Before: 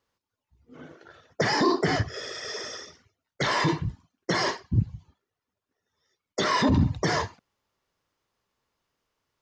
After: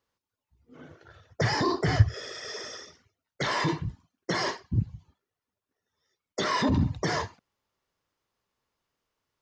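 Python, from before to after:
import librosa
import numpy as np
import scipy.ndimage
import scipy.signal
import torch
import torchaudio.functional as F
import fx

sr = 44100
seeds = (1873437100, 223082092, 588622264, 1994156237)

y = fx.low_shelf_res(x, sr, hz=150.0, db=10.5, q=1.5, at=(0.87, 2.14))
y = y * librosa.db_to_amplitude(-3.0)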